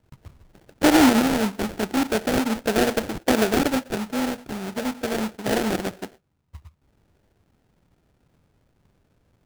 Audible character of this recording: phasing stages 6, 0.4 Hz, lowest notch 600–1700 Hz; aliases and images of a low sample rate 1100 Hz, jitter 20%

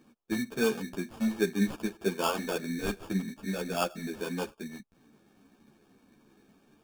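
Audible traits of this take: aliases and images of a low sample rate 2000 Hz, jitter 0%; a shimmering, thickened sound

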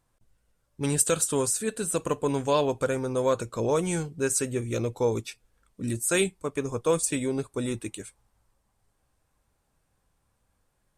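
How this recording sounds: noise floor -74 dBFS; spectral tilt -4.0 dB/oct

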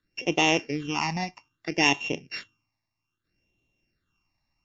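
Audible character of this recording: a buzz of ramps at a fixed pitch in blocks of 16 samples; phasing stages 8, 0.62 Hz, lowest notch 410–1500 Hz; WMA

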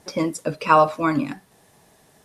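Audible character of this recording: noise floor -57 dBFS; spectral tilt -5.0 dB/oct

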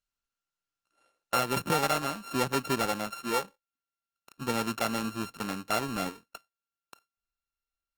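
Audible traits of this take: a buzz of ramps at a fixed pitch in blocks of 32 samples; Opus

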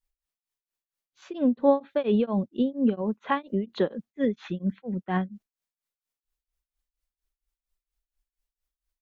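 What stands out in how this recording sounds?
tremolo triangle 4.3 Hz, depth 100%

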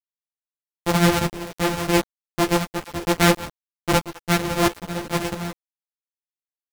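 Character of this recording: a buzz of ramps at a fixed pitch in blocks of 256 samples; tremolo saw up 1.5 Hz, depth 90%; a quantiser's noise floor 6-bit, dither none; a shimmering, thickened sound

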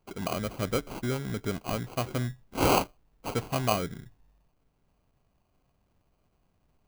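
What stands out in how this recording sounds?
aliases and images of a low sample rate 1800 Hz, jitter 0%

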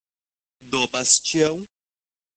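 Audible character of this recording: tremolo saw up 3.4 Hz, depth 55%; a quantiser's noise floor 8-bit, dither none; phasing stages 2, 1 Hz, lowest notch 620–1600 Hz; Opus

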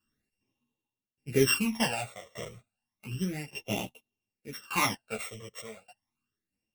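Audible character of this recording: a buzz of ramps at a fixed pitch in blocks of 16 samples; phasing stages 12, 0.32 Hz, lowest notch 260–1700 Hz; tremolo saw down 0.85 Hz, depth 95%; a shimmering, thickened sound

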